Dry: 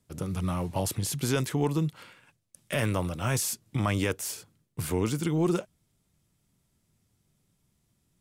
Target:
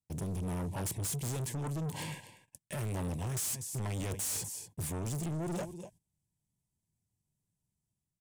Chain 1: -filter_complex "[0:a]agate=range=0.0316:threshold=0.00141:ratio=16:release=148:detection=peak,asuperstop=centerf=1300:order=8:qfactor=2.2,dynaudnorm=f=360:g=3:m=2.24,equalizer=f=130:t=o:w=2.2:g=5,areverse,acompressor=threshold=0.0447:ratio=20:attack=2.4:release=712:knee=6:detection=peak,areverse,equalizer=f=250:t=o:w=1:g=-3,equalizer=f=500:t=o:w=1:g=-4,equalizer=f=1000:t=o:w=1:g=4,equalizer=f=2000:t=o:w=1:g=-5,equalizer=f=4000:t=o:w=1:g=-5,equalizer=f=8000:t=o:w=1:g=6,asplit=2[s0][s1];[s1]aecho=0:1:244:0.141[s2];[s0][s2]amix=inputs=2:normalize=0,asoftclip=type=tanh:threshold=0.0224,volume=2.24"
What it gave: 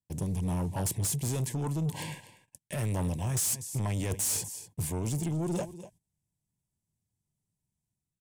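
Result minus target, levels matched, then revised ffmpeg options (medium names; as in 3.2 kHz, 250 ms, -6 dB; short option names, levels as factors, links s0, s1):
saturation: distortion -5 dB
-filter_complex "[0:a]agate=range=0.0316:threshold=0.00141:ratio=16:release=148:detection=peak,asuperstop=centerf=1300:order=8:qfactor=2.2,dynaudnorm=f=360:g=3:m=2.24,equalizer=f=130:t=o:w=2.2:g=5,areverse,acompressor=threshold=0.0447:ratio=20:attack=2.4:release=712:knee=6:detection=peak,areverse,equalizer=f=250:t=o:w=1:g=-3,equalizer=f=500:t=o:w=1:g=-4,equalizer=f=1000:t=o:w=1:g=4,equalizer=f=2000:t=o:w=1:g=-5,equalizer=f=4000:t=o:w=1:g=-5,equalizer=f=8000:t=o:w=1:g=6,asplit=2[s0][s1];[s1]aecho=0:1:244:0.141[s2];[s0][s2]amix=inputs=2:normalize=0,asoftclip=type=tanh:threshold=0.00944,volume=2.24"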